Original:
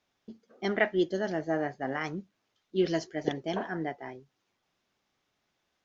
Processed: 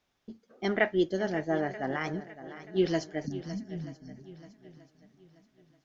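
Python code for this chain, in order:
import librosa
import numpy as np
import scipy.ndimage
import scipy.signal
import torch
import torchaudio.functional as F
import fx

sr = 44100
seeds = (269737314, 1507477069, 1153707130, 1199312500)

y = fx.spec_erase(x, sr, start_s=3.26, length_s=0.92, low_hz=280.0, high_hz=4200.0)
y = fx.low_shelf(y, sr, hz=91.0, db=7.5)
y = fx.echo_swing(y, sr, ms=932, ratio=1.5, feedback_pct=31, wet_db=-14.5)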